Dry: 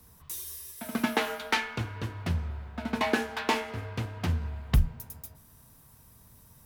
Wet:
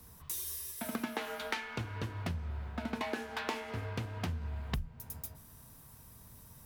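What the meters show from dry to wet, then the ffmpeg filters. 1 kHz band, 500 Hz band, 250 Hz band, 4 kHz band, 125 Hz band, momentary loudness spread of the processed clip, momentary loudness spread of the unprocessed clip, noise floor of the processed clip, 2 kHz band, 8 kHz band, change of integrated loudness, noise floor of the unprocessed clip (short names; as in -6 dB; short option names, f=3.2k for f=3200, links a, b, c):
-8.5 dB, -7.0 dB, -7.5 dB, -8.0 dB, -7.5 dB, 16 LU, 11 LU, -56 dBFS, -8.0 dB, -2.5 dB, -7.5 dB, -57 dBFS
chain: -af "acompressor=threshold=-35dB:ratio=6,volume=1dB"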